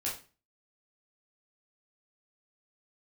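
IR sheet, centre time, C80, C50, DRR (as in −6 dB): 30 ms, 13.0 dB, 6.5 dB, −5.5 dB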